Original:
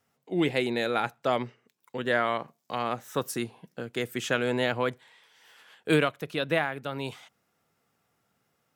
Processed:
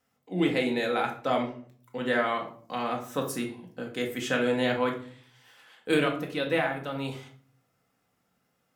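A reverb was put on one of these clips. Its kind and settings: simulated room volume 510 m³, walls furnished, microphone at 2 m; trim -3 dB

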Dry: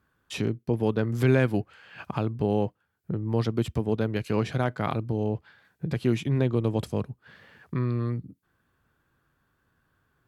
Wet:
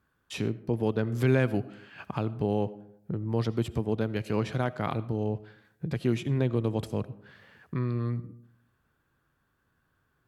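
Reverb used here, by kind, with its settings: algorithmic reverb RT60 0.75 s, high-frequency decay 0.4×, pre-delay 40 ms, DRR 17.5 dB; trim -2.5 dB

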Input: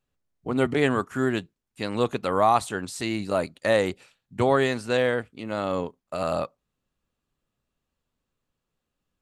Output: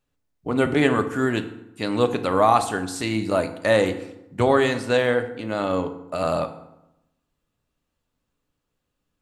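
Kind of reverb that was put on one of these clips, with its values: FDN reverb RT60 0.88 s, low-frequency decay 1.2×, high-frequency decay 0.65×, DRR 7.5 dB; trim +2.5 dB

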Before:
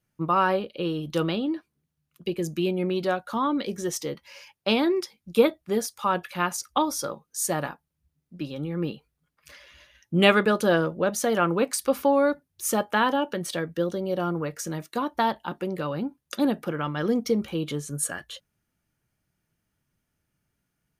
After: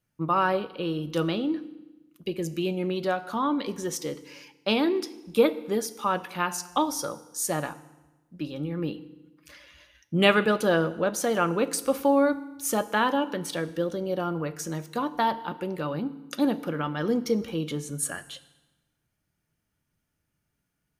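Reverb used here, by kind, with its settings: FDN reverb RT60 1.1 s, low-frequency decay 1.2×, high-frequency decay 0.9×, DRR 13 dB; trim -1.5 dB

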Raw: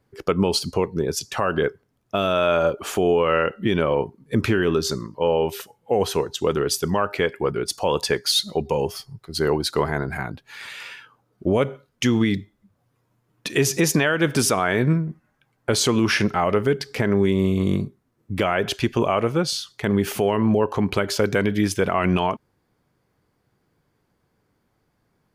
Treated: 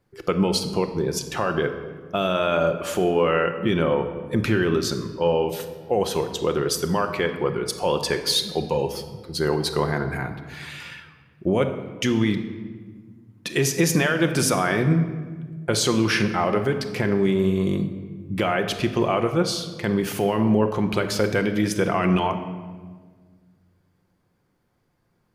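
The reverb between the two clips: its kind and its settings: simulated room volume 1700 m³, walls mixed, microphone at 0.87 m; trim -2 dB

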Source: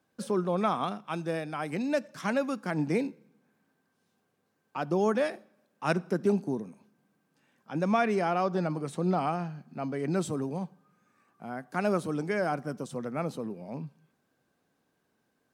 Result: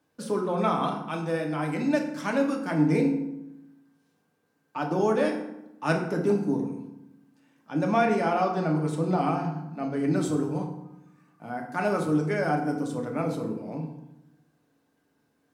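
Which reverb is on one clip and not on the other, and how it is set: FDN reverb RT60 0.9 s, low-frequency decay 1.4×, high-frequency decay 0.6×, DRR 0.5 dB

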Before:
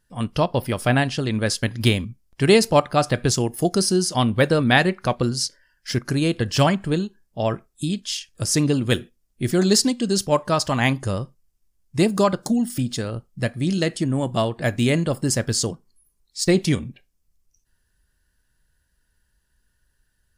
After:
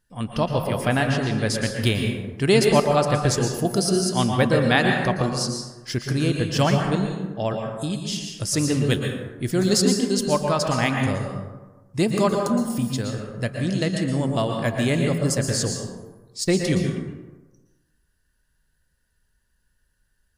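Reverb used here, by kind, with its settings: plate-style reverb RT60 1.2 s, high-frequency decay 0.45×, pre-delay 105 ms, DRR 2 dB; trim -3 dB

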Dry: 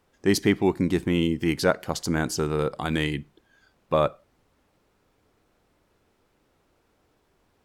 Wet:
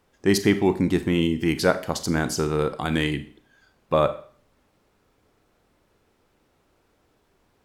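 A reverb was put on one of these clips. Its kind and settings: Schroeder reverb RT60 0.46 s, combs from 29 ms, DRR 11 dB; trim +1.5 dB

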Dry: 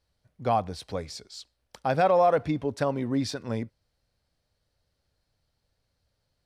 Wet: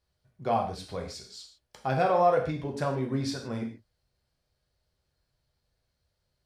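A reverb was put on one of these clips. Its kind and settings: gated-style reverb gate 180 ms falling, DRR 0.5 dB; trim -4.5 dB

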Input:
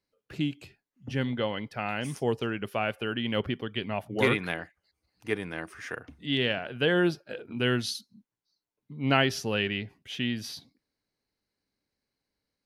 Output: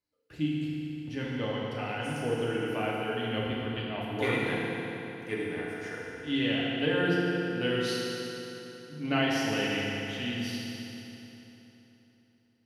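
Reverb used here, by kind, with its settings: FDN reverb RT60 3.6 s, high-frequency decay 0.8×, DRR -5.5 dB; trim -8 dB

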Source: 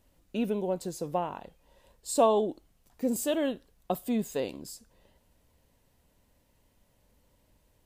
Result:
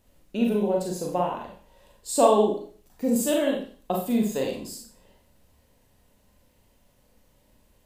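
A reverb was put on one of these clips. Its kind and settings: Schroeder reverb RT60 0.45 s, combs from 30 ms, DRR -0.5 dB; trim +2 dB

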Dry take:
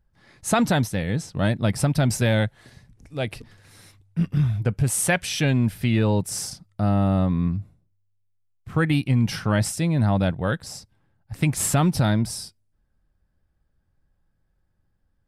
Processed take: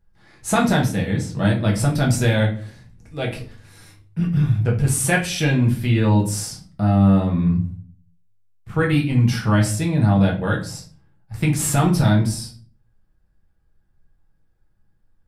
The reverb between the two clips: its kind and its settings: simulated room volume 31 m³, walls mixed, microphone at 0.65 m; trim -1.5 dB

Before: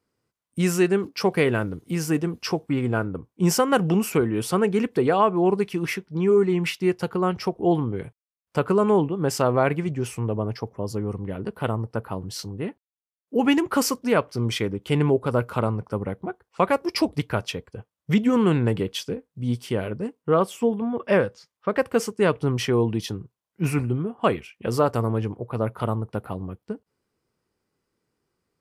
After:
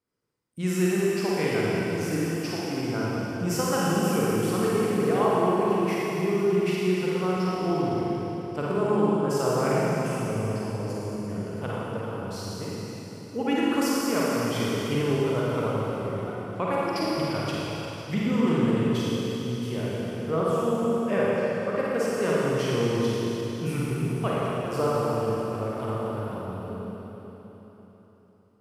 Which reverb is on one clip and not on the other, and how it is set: Schroeder reverb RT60 3.9 s, DRR -7 dB; trim -10 dB

